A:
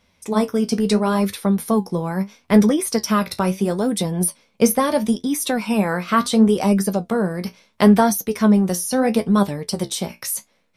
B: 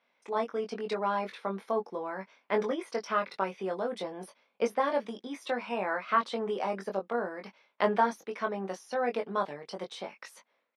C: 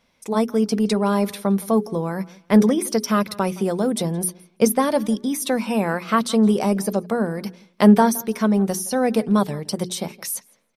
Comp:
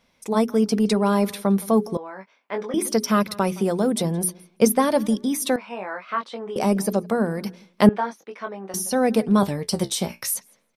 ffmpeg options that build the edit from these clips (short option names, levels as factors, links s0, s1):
-filter_complex "[1:a]asplit=3[s0][s1][s2];[2:a]asplit=5[s3][s4][s5][s6][s7];[s3]atrim=end=1.972[s8];[s0]atrim=start=1.968:end=2.742[s9];[s4]atrim=start=2.738:end=5.562[s10];[s1]atrim=start=5.558:end=6.562[s11];[s5]atrim=start=6.558:end=7.892[s12];[s2]atrim=start=7.888:end=8.742[s13];[s6]atrim=start=8.738:end=9.432[s14];[0:a]atrim=start=9.428:end=10.342[s15];[s7]atrim=start=10.338[s16];[s8][s9]acrossfade=d=0.004:c1=hsin:c2=hsin[s17];[s17][s10]acrossfade=d=0.004:c1=hsin:c2=hsin[s18];[s18][s11]acrossfade=d=0.004:c1=hsin:c2=hsin[s19];[s19][s12]acrossfade=d=0.004:c1=hsin:c2=hsin[s20];[s20][s13]acrossfade=d=0.004:c1=hsin:c2=hsin[s21];[s21][s14]acrossfade=d=0.004:c1=hsin:c2=hsin[s22];[s22][s15]acrossfade=d=0.004:c1=hsin:c2=hsin[s23];[s23][s16]acrossfade=d=0.004:c1=hsin:c2=hsin"